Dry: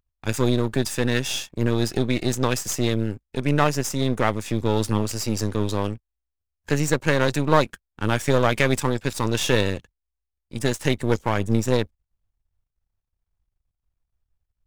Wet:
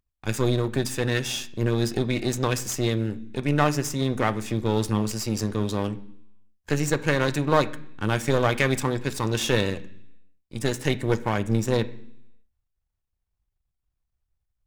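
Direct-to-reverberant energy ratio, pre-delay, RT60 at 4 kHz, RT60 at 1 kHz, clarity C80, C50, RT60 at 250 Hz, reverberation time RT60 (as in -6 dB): 9.5 dB, 3 ms, 0.90 s, 0.70 s, 20.0 dB, 17.5 dB, 0.85 s, 0.70 s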